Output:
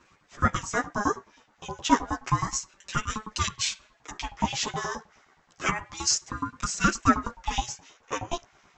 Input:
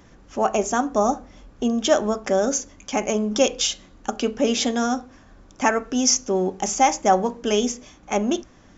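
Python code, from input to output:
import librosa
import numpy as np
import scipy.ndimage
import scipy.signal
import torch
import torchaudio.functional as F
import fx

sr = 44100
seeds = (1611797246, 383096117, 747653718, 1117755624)

y = fx.filter_lfo_highpass(x, sr, shape='saw_up', hz=9.5, low_hz=420.0, high_hz=2400.0, q=1.7)
y = fx.chorus_voices(y, sr, voices=2, hz=0.29, base_ms=10, depth_ms=4.9, mix_pct=50)
y = fx.ring_lfo(y, sr, carrier_hz=480.0, swing_pct=35, hz=0.31)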